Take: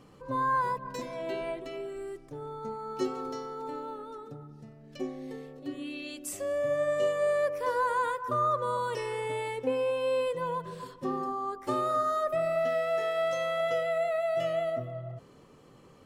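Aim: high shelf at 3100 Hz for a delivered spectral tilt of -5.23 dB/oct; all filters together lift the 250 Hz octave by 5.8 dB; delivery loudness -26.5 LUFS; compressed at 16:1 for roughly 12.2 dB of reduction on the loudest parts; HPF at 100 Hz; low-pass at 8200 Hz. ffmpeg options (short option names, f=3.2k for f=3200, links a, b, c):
-af "highpass=100,lowpass=8.2k,equalizer=f=250:t=o:g=7,highshelf=f=3.1k:g=-5.5,acompressor=threshold=-34dB:ratio=16,volume=12dB"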